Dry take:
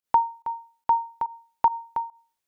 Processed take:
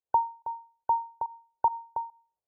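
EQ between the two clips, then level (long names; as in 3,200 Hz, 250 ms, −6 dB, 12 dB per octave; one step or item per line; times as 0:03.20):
high-pass filter 44 Hz 12 dB per octave
linear-phase brick-wall low-pass 1,500 Hz
phaser with its sweep stopped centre 570 Hz, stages 4
0.0 dB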